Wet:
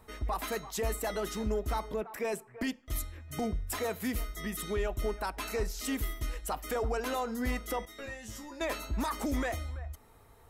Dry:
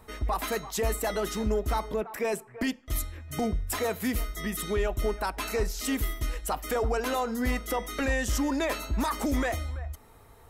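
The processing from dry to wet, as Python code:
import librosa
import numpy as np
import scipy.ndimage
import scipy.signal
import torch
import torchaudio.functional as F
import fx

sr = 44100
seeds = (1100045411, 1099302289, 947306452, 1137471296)

y = fx.comb_fb(x, sr, f0_hz=110.0, decay_s=0.2, harmonics='all', damping=0.0, mix_pct=100, at=(7.85, 8.61))
y = y * librosa.db_to_amplitude(-4.5)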